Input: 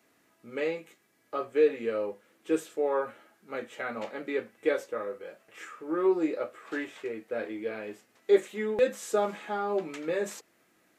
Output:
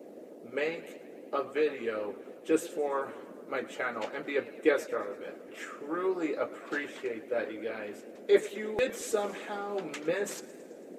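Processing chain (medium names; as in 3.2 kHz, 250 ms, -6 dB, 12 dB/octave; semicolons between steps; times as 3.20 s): band noise 220–590 Hz -48 dBFS; harmonic-percussive split harmonic -11 dB; modulated delay 110 ms, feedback 68%, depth 144 cents, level -18 dB; trim +4.5 dB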